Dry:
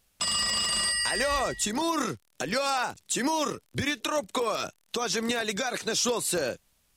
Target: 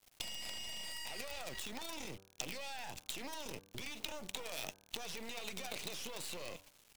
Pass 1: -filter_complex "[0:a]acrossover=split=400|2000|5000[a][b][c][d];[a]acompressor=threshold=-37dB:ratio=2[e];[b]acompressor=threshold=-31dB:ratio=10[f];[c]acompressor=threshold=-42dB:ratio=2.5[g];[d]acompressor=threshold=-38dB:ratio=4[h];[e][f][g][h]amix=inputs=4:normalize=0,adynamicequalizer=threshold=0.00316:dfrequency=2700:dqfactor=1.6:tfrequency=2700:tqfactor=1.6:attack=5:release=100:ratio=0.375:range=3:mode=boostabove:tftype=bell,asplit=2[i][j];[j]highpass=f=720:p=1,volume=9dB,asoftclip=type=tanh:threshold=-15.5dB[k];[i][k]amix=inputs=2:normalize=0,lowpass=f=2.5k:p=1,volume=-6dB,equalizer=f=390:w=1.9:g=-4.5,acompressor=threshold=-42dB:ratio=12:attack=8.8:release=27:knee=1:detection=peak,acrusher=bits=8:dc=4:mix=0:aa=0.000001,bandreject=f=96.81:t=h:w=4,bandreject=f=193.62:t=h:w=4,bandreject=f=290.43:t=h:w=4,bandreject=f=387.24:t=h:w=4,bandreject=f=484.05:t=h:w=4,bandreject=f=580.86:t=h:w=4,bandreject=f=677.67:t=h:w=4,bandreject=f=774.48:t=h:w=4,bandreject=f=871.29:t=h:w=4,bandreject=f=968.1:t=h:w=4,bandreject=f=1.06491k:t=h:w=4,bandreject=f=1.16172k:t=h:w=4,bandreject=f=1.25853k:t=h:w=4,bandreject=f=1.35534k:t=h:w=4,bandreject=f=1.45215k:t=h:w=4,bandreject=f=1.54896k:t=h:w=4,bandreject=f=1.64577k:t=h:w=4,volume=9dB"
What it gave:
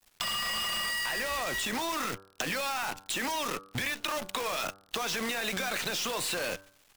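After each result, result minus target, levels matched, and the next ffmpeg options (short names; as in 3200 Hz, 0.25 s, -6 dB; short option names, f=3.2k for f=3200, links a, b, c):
compressor: peak gain reduction -7 dB; 1000 Hz band +3.5 dB
-filter_complex "[0:a]acrossover=split=400|2000|5000[a][b][c][d];[a]acompressor=threshold=-37dB:ratio=2[e];[b]acompressor=threshold=-31dB:ratio=10[f];[c]acompressor=threshold=-42dB:ratio=2.5[g];[d]acompressor=threshold=-38dB:ratio=4[h];[e][f][g][h]amix=inputs=4:normalize=0,adynamicequalizer=threshold=0.00316:dfrequency=2700:dqfactor=1.6:tfrequency=2700:tqfactor=1.6:attack=5:release=100:ratio=0.375:range=3:mode=boostabove:tftype=bell,asplit=2[i][j];[j]highpass=f=720:p=1,volume=9dB,asoftclip=type=tanh:threshold=-15.5dB[k];[i][k]amix=inputs=2:normalize=0,lowpass=f=2.5k:p=1,volume=-6dB,equalizer=f=390:w=1.9:g=-4.5,acompressor=threshold=-51dB:ratio=12:attack=8.8:release=27:knee=1:detection=peak,acrusher=bits=8:dc=4:mix=0:aa=0.000001,bandreject=f=96.81:t=h:w=4,bandreject=f=193.62:t=h:w=4,bandreject=f=290.43:t=h:w=4,bandreject=f=387.24:t=h:w=4,bandreject=f=484.05:t=h:w=4,bandreject=f=580.86:t=h:w=4,bandreject=f=677.67:t=h:w=4,bandreject=f=774.48:t=h:w=4,bandreject=f=871.29:t=h:w=4,bandreject=f=968.1:t=h:w=4,bandreject=f=1.06491k:t=h:w=4,bandreject=f=1.16172k:t=h:w=4,bandreject=f=1.25853k:t=h:w=4,bandreject=f=1.35534k:t=h:w=4,bandreject=f=1.45215k:t=h:w=4,bandreject=f=1.54896k:t=h:w=4,bandreject=f=1.64577k:t=h:w=4,volume=9dB"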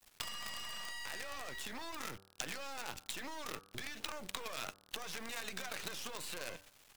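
1000 Hz band +2.5 dB
-filter_complex "[0:a]acrossover=split=400|2000|5000[a][b][c][d];[a]acompressor=threshold=-37dB:ratio=2[e];[b]acompressor=threshold=-31dB:ratio=10[f];[c]acompressor=threshold=-42dB:ratio=2.5[g];[d]acompressor=threshold=-38dB:ratio=4[h];[e][f][g][h]amix=inputs=4:normalize=0,adynamicequalizer=threshold=0.00316:dfrequency=2700:dqfactor=1.6:tfrequency=2700:tqfactor=1.6:attack=5:release=100:ratio=0.375:range=3:mode=boostabove:tftype=bell,asuperstop=centerf=1400:order=8:qfactor=1.2,asplit=2[i][j];[j]highpass=f=720:p=1,volume=9dB,asoftclip=type=tanh:threshold=-15.5dB[k];[i][k]amix=inputs=2:normalize=0,lowpass=f=2.5k:p=1,volume=-6dB,equalizer=f=390:w=1.9:g=-4.5,acompressor=threshold=-51dB:ratio=12:attack=8.8:release=27:knee=1:detection=peak,acrusher=bits=8:dc=4:mix=0:aa=0.000001,bandreject=f=96.81:t=h:w=4,bandreject=f=193.62:t=h:w=4,bandreject=f=290.43:t=h:w=4,bandreject=f=387.24:t=h:w=4,bandreject=f=484.05:t=h:w=4,bandreject=f=580.86:t=h:w=4,bandreject=f=677.67:t=h:w=4,bandreject=f=774.48:t=h:w=4,bandreject=f=871.29:t=h:w=4,bandreject=f=968.1:t=h:w=4,bandreject=f=1.06491k:t=h:w=4,bandreject=f=1.16172k:t=h:w=4,bandreject=f=1.25853k:t=h:w=4,bandreject=f=1.35534k:t=h:w=4,bandreject=f=1.45215k:t=h:w=4,bandreject=f=1.54896k:t=h:w=4,bandreject=f=1.64577k:t=h:w=4,volume=9dB"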